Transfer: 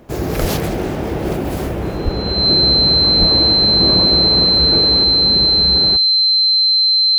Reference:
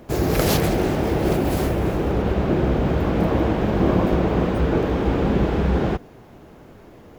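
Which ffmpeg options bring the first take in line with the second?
ffmpeg -i in.wav -filter_complex "[0:a]bandreject=frequency=4100:width=30,asplit=3[link_01][link_02][link_03];[link_01]afade=type=out:start_time=0.4:duration=0.02[link_04];[link_02]highpass=frequency=140:width=0.5412,highpass=frequency=140:width=1.3066,afade=type=in:start_time=0.4:duration=0.02,afade=type=out:start_time=0.52:duration=0.02[link_05];[link_03]afade=type=in:start_time=0.52:duration=0.02[link_06];[link_04][link_05][link_06]amix=inputs=3:normalize=0,asplit=3[link_07][link_08][link_09];[link_07]afade=type=out:start_time=2.04:duration=0.02[link_10];[link_08]highpass=frequency=140:width=0.5412,highpass=frequency=140:width=1.3066,afade=type=in:start_time=2.04:duration=0.02,afade=type=out:start_time=2.16:duration=0.02[link_11];[link_09]afade=type=in:start_time=2.16:duration=0.02[link_12];[link_10][link_11][link_12]amix=inputs=3:normalize=0,asplit=3[link_13][link_14][link_15];[link_13]afade=type=out:start_time=3.19:duration=0.02[link_16];[link_14]highpass=frequency=140:width=0.5412,highpass=frequency=140:width=1.3066,afade=type=in:start_time=3.19:duration=0.02,afade=type=out:start_time=3.31:duration=0.02[link_17];[link_15]afade=type=in:start_time=3.31:duration=0.02[link_18];[link_16][link_17][link_18]amix=inputs=3:normalize=0,asetnsamples=nb_out_samples=441:pad=0,asendcmd='5.04 volume volume 3.5dB',volume=0dB" out.wav

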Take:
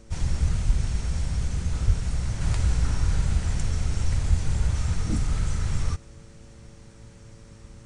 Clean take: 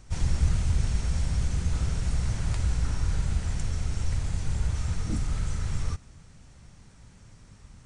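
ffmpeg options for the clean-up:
ffmpeg -i in.wav -filter_complex "[0:a]bandreject=frequency=112:width_type=h:width=4,bandreject=frequency=224:width_type=h:width=4,bandreject=frequency=336:width_type=h:width=4,bandreject=frequency=448:width_type=h:width=4,bandreject=frequency=560:width_type=h:width=4,asplit=3[link_01][link_02][link_03];[link_01]afade=type=out:start_time=0.66:duration=0.02[link_04];[link_02]highpass=frequency=140:width=0.5412,highpass=frequency=140:width=1.3066,afade=type=in:start_time=0.66:duration=0.02,afade=type=out:start_time=0.78:duration=0.02[link_05];[link_03]afade=type=in:start_time=0.78:duration=0.02[link_06];[link_04][link_05][link_06]amix=inputs=3:normalize=0,asplit=3[link_07][link_08][link_09];[link_07]afade=type=out:start_time=1.86:duration=0.02[link_10];[link_08]highpass=frequency=140:width=0.5412,highpass=frequency=140:width=1.3066,afade=type=in:start_time=1.86:duration=0.02,afade=type=out:start_time=1.98:duration=0.02[link_11];[link_09]afade=type=in:start_time=1.98:duration=0.02[link_12];[link_10][link_11][link_12]amix=inputs=3:normalize=0,asplit=3[link_13][link_14][link_15];[link_13]afade=type=out:start_time=4.29:duration=0.02[link_16];[link_14]highpass=frequency=140:width=0.5412,highpass=frequency=140:width=1.3066,afade=type=in:start_time=4.29:duration=0.02,afade=type=out:start_time=4.41:duration=0.02[link_17];[link_15]afade=type=in:start_time=4.41:duration=0.02[link_18];[link_16][link_17][link_18]amix=inputs=3:normalize=0,asetnsamples=nb_out_samples=441:pad=0,asendcmd='2.41 volume volume -3.5dB',volume=0dB" out.wav

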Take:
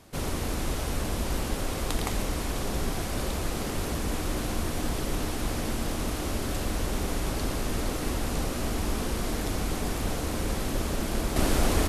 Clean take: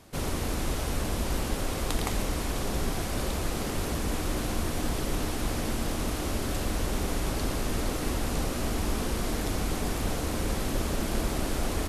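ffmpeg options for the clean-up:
ffmpeg -i in.wav -af "asetnsamples=nb_out_samples=441:pad=0,asendcmd='11.36 volume volume -5.5dB',volume=0dB" out.wav

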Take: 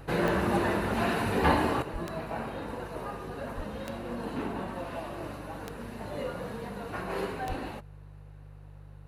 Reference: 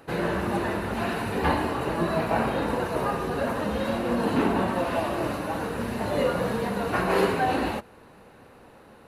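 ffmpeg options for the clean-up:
ffmpeg -i in.wav -filter_complex "[0:a]adeclick=threshold=4,bandreject=frequency=49.7:width_type=h:width=4,bandreject=frequency=99.4:width_type=h:width=4,bandreject=frequency=149.1:width_type=h:width=4,asplit=3[link_01][link_02][link_03];[link_01]afade=type=out:start_time=1.92:duration=0.02[link_04];[link_02]highpass=frequency=140:width=0.5412,highpass=frequency=140:width=1.3066,afade=type=in:start_time=1.92:duration=0.02,afade=type=out:start_time=2.04:duration=0.02[link_05];[link_03]afade=type=in:start_time=2.04:duration=0.02[link_06];[link_04][link_05][link_06]amix=inputs=3:normalize=0,asplit=3[link_07][link_08][link_09];[link_07]afade=type=out:start_time=3.56:duration=0.02[link_10];[link_08]highpass=frequency=140:width=0.5412,highpass=frequency=140:width=1.3066,afade=type=in:start_time=3.56:duration=0.02,afade=type=out:start_time=3.68:duration=0.02[link_11];[link_09]afade=type=in:start_time=3.68:duration=0.02[link_12];[link_10][link_11][link_12]amix=inputs=3:normalize=0,asplit=3[link_13][link_14][link_15];[link_13]afade=type=out:start_time=7.48:duration=0.02[link_16];[link_14]highpass=frequency=140:width=0.5412,highpass=frequency=140:width=1.3066,afade=type=in:start_time=7.48:duration=0.02,afade=type=out:start_time=7.6:duration=0.02[link_17];[link_15]afade=type=in:start_time=7.6:duration=0.02[link_18];[link_16][link_17][link_18]amix=inputs=3:normalize=0,asetnsamples=nb_out_samples=441:pad=0,asendcmd='1.82 volume volume 11dB',volume=0dB" out.wav

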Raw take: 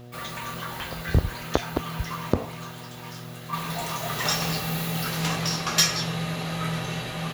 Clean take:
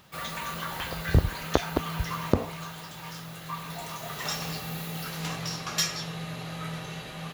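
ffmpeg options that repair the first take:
ffmpeg -i in.wav -af "bandreject=frequency=121.1:width_type=h:width=4,bandreject=frequency=242.2:width_type=h:width=4,bandreject=frequency=363.3:width_type=h:width=4,bandreject=frequency=484.4:width_type=h:width=4,bandreject=frequency=605.5:width_type=h:width=4,bandreject=frequency=726.6:width_type=h:width=4,asetnsamples=nb_out_samples=441:pad=0,asendcmd='3.53 volume volume -7dB',volume=0dB" out.wav

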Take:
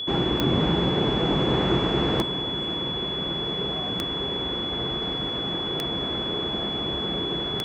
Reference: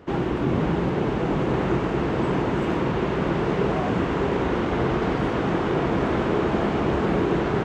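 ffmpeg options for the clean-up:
ffmpeg -i in.wav -af "adeclick=threshold=4,bandreject=frequency=3400:width=30,asetnsamples=nb_out_samples=441:pad=0,asendcmd='2.22 volume volume 8.5dB',volume=0dB" out.wav

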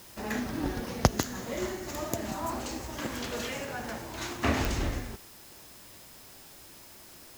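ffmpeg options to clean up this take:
ffmpeg -i in.wav -af "adeclick=threshold=4,bandreject=frequency=5100:width=30,afwtdn=0.0025" out.wav

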